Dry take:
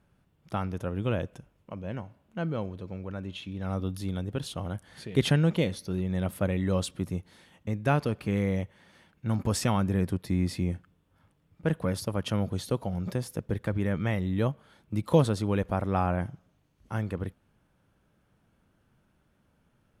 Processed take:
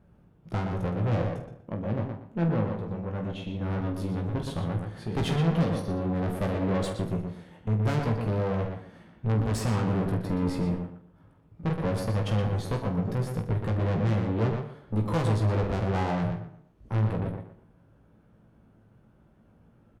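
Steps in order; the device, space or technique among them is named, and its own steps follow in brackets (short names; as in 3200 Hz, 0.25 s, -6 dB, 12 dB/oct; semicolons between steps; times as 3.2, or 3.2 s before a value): tilt shelf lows +7.5 dB, about 1400 Hz; rockabilly slapback (tube stage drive 27 dB, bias 0.5; tape echo 0.12 s, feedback 30%, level -3 dB, low-pass 3000 Hz); early reflections 18 ms -5.5 dB, 47 ms -9.5 dB, 74 ms -15.5 dB; gain +2 dB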